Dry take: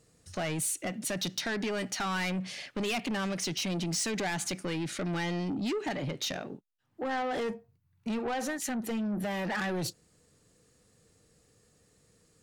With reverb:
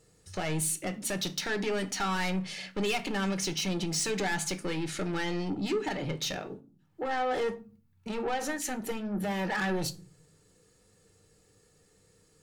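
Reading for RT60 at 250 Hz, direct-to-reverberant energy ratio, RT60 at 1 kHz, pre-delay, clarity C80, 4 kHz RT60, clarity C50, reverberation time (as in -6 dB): 0.70 s, 8.0 dB, 0.35 s, 5 ms, 24.5 dB, 0.25 s, 18.5 dB, 0.40 s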